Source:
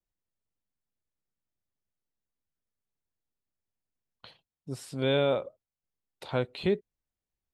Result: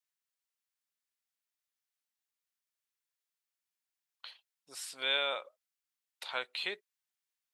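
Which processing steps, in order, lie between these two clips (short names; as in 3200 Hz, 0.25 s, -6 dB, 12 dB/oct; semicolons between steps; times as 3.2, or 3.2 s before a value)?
HPF 1400 Hz 12 dB/oct; gain +4 dB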